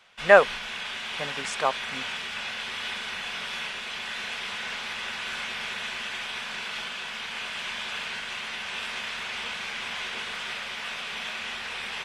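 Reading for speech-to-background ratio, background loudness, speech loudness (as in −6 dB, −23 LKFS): 10.0 dB, −32.0 LKFS, −22.0 LKFS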